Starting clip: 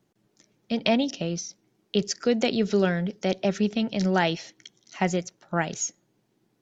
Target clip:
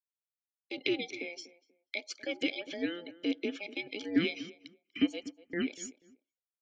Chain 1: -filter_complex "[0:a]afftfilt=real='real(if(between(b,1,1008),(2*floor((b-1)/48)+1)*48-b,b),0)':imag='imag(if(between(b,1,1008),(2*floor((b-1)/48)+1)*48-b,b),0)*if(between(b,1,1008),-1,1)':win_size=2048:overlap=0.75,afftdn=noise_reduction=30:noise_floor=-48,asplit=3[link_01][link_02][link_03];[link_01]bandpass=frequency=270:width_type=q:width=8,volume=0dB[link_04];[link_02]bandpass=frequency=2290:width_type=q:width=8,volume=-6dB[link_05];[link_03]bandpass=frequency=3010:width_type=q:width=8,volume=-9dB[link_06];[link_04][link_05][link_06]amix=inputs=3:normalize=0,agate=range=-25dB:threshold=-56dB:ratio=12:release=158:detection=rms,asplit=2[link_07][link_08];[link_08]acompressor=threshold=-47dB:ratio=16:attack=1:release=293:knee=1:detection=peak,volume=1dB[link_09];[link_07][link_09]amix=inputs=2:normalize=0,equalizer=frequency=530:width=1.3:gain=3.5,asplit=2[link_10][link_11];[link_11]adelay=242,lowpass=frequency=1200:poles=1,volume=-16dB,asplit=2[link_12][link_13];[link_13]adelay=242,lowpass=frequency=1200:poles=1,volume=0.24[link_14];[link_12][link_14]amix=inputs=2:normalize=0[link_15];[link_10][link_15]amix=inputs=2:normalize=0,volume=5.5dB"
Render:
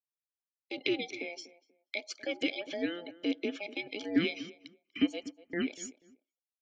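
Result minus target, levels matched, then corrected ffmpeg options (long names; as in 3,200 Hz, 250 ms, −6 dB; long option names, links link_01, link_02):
1,000 Hz band +2.5 dB
-filter_complex "[0:a]afftfilt=real='real(if(between(b,1,1008),(2*floor((b-1)/48)+1)*48-b,b),0)':imag='imag(if(between(b,1,1008),(2*floor((b-1)/48)+1)*48-b,b),0)*if(between(b,1,1008),-1,1)':win_size=2048:overlap=0.75,afftdn=noise_reduction=30:noise_floor=-48,asplit=3[link_01][link_02][link_03];[link_01]bandpass=frequency=270:width_type=q:width=8,volume=0dB[link_04];[link_02]bandpass=frequency=2290:width_type=q:width=8,volume=-6dB[link_05];[link_03]bandpass=frequency=3010:width_type=q:width=8,volume=-9dB[link_06];[link_04][link_05][link_06]amix=inputs=3:normalize=0,agate=range=-25dB:threshold=-56dB:ratio=12:release=158:detection=rms,asplit=2[link_07][link_08];[link_08]acompressor=threshold=-47dB:ratio=16:attack=1:release=293:knee=1:detection=peak,asuperstop=centerf=820:order=12:qfactor=3.4,volume=1dB[link_09];[link_07][link_09]amix=inputs=2:normalize=0,equalizer=frequency=530:width=1.3:gain=3.5,asplit=2[link_10][link_11];[link_11]adelay=242,lowpass=frequency=1200:poles=1,volume=-16dB,asplit=2[link_12][link_13];[link_13]adelay=242,lowpass=frequency=1200:poles=1,volume=0.24[link_14];[link_12][link_14]amix=inputs=2:normalize=0[link_15];[link_10][link_15]amix=inputs=2:normalize=0,volume=5.5dB"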